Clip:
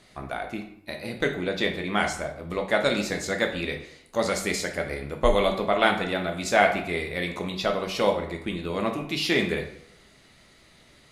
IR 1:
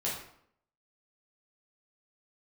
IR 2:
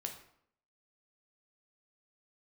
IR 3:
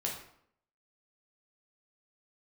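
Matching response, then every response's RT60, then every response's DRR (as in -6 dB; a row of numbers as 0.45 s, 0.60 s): 2; 0.65 s, 0.65 s, 0.65 s; -6.5 dB, 3.0 dB, -2.0 dB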